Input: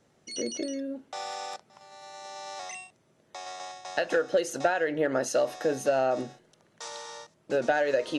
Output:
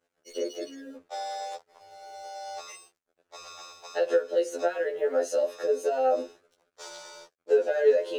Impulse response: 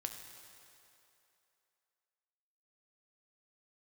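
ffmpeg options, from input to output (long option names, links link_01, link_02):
-af "highpass=frequency=450:width_type=q:width=4.9,alimiter=limit=-13dB:level=0:latency=1:release=261,aeval=exprs='sgn(val(0))*max(abs(val(0))-0.00168,0)':channel_layout=same,afftfilt=real='re*2*eq(mod(b,4),0)':imag='im*2*eq(mod(b,4),0)':win_size=2048:overlap=0.75"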